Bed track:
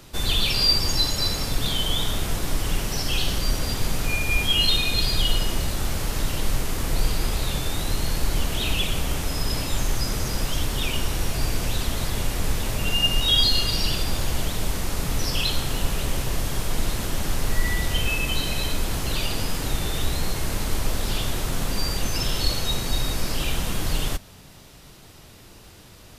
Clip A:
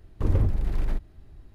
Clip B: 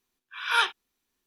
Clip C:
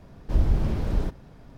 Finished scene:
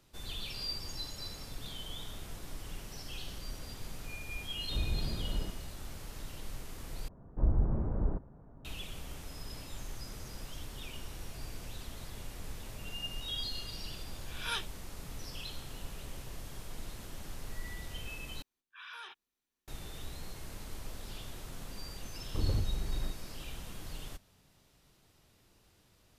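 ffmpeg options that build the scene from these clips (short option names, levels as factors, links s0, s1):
-filter_complex "[3:a]asplit=2[s0][s1];[2:a]asplit=2[s2][s3];[0:a]volume=0.112[s4];[s1]lowpass=f=1300:w=0.5412,lowpass=f=1300:w=1.3066[s5];[s2]equalizer=f=1200:w=0.46:g=-12.5[s6];[s3]acompressor=threshold=0.0224:ratio=6:attack=0.66:release=40:knee=1:detection=rms[s7];[s4]asplit=3[s8][s9][s10];[s8]atrim=end=7.084[s11];[s5]atrim=end=1.57,asetpts=PTS-STARTPTS,volume=0.473[s12];[s9]atrim=start=8.646:end=18.424[s13];[s7]atrim=end=1.26,asetpts=PTS-STARTPTS,volume=0.316[s14];[s10]atrim=start=19.676[s15];[s0]atrim=end=1.57,asetpts=PTS-STARTPTS,volume=0.251,afade=t=in:d=0.004:c=hsin,afade=t=out:st=1.566:d=0.004:c=hsin,adelay=194481S[s16];[s6]atrim=end=1.26,asetpts=PTS-STARTPTS,volume=0.631,afade=t=in:d=0.004:c=hsin,afade=t=out:st=1.256:d=0.004:c=hsin,adelay=13940[s17];[1:a]atrim=end=1.54,asetpts=PTS-STARTPTS,volume=0.355,afade=t=in:d=0.004:c=hsin,afade=t=out:st=1.536:d=0.004:c=hsin,adelay=22140[s18];[s11][s12]acrossfade=d=0.004:c1=hsin:c2=hsin[s19];[s19][s13]acrossfade=d=0.004:c1=hsin:c2=hsin[s20];[s20][s14]acrossfade=d=0.004:c1=hsin:c2=hsin[s21];[s21][s15]acrossfade=d=0.004:c1=hsin:c2=hsin[s22];[s22][s16][s17][s18]amix=inputs=4:normalize=0"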